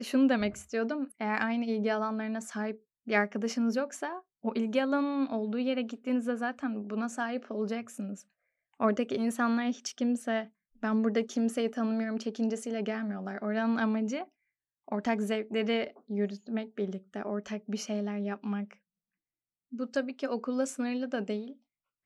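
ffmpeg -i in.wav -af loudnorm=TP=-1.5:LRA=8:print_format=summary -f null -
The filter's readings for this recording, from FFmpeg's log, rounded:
Input Integrated:    -32.3 LUFS
Input True Peak:     -13.4 dBTP
Input LRA:             4.5 LU
Input Threshold:     -42.5 LUFS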